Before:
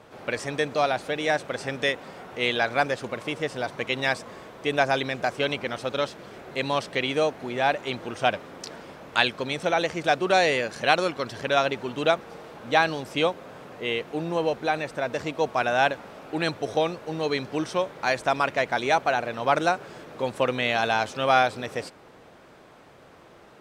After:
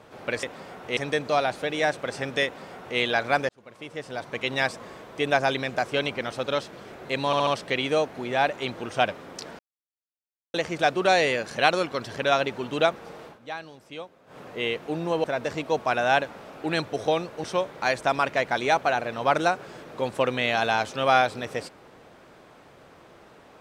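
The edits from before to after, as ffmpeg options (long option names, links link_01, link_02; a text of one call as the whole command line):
ffmpeg -i in.wav -filter_complex "[0:a]asplit=13[link_01][link_02][link_03][link_04][link_05][link_06][link_07][link_08][link_09][link_10][link_11][link_12][link_13];[link_01]atrim=end=0.432[link_14];[link_02]atrim=start=1.908:end=2.452[link_15];[link_03]atrim=start=0.428:end=2.95,asetpts=PTS-STARTPTS,afade=type=out:start_time=2.518:duration=0.004:curve=hsin[link_16];[link_04]atrim=start=2.95:end=6.792,asetpts=PTS-STARTPTS,afade=type=in:duration=1.07[link_17];[link_05]atrim=start=6.718:end=6.792[link_18];[link_06]atrim=start=6.718:end=6.792[link_19];[link_07]atrim=start=6.718:end=8.84,asetpts=PTS-STARTPTS,afade=type=out:start_time=2.118:duration=0.004:curve=hsin[link_20];[link_08]atrim=start=8.84:end=9.79,asetpts=PTS-STARTPTS,volume=0[link_21];[link_09]atrim=start=9.79:end=12.64,asetpts=PTS-STARTPTS,afade=type=in:duration=0.004:curve=hsin,afade=type=out:start_time=2.72:duration=0.13:silence=0.177828[link_22];[link_10]atrim=start=12.64:end=13.51,asetpts=PTS-STARTPTS,volume=-15dB[link_23];[link_11]atrim=start=13.51:end=14.492,asetpts=PTS-STARTPTS,afade=type=in:duration=0.13:silence=0.177828[link_24];[link_12]atrim=start=14.928:end=17.132[link_25];[link_13]atrim=start=17.648[link_26];[link_14][link_15]acrossfade=duration=0.004:curve1=hsin:curve2=hsin[link_27];[link_16][link_17]concat=n=2:v=0:a=1[link_28];[link_27][link_28]acrossfade=duration=0.004:curve1=hsin:curve2=hsin[link_29];[link_29][link_18]acrossfade=duration=0.004:curve1=hsin:curve2=hsin[link_30];[link_30][link_19]acrossfade=duration=0.004:curve1=hsin:curve2=hsin[link_31];[link_20][link_21][link_22][link_23][link_24]concat=n=5:v=0:a=1[link_32];[link_31][link_32]acrossfade=duration=0.004:curve1=hsin:curve2=hsin[link_33];[link_33][link_25]acrossfade=duration=0.004:curve1=hsin:curve2=hsin[link_34];[link_34][link_26]acrossfade=duration=0.004:curve1=hsin:curve2=hsin" out.wav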